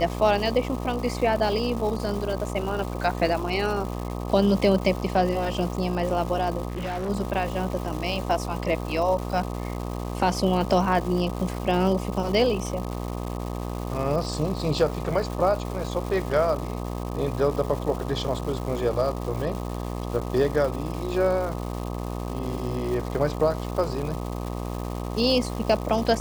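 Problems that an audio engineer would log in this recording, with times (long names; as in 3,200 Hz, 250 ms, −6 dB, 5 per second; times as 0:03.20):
mains buzz 60 Hz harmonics 21 −31 dBFS
surface crackle 440 per second −32 dBFS
0:06.68–0:07.10: clipping −26.5 dBFS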